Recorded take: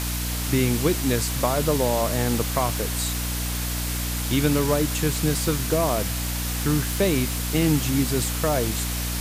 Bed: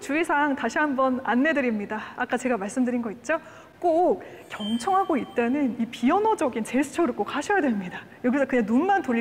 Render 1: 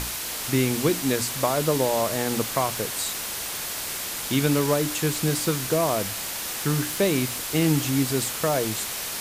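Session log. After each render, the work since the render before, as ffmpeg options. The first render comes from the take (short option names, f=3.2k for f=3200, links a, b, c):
-af "bandreject=f=60:t=h:w=6,bandreject=f=120:t=h:w=6,bandreject=f=180:t=h:w=6,bandreject=f=240:t=h:w=6,bandreject=f=300:t=h:w=6"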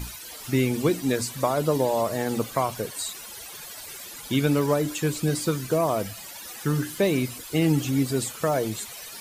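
-af "afftdn=nr=15:nf=-32"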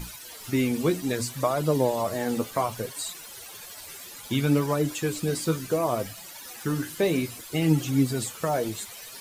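-filter_complex "[0:a]asplit=2[a][b];[b]aeval=exprs='val(0)*gte(abs(val(0)),0.0126)':c=same,volume=-11dB[c];[a][c]amix=inputs=2:normalize=0,flanger=delay=5.5:depth=7.3:regen=42:speed=0.64:shape=triangular"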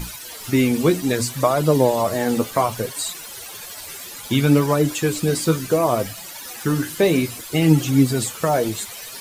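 -af "volume=7dB"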